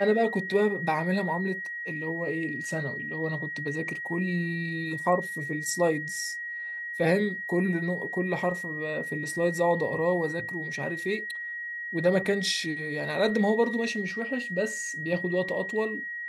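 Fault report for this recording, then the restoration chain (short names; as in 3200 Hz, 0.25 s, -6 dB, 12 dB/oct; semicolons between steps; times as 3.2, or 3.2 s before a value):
tone 1900 Hz -33 dBFS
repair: notch 1900 Hz, Q 30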